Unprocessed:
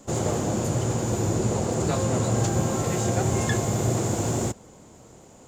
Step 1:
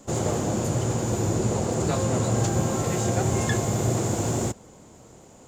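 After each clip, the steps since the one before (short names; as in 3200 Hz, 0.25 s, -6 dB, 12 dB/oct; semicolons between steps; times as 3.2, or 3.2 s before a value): nothing audible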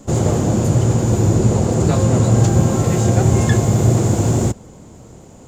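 low shelf 300 Hz +9 dB; gain +4 dB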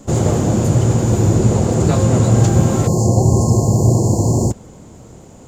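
spectral delete 2.87–4.51, 1100–4100 Hz; gain +1 dB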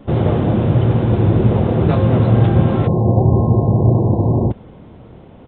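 downsampling 8000 Hz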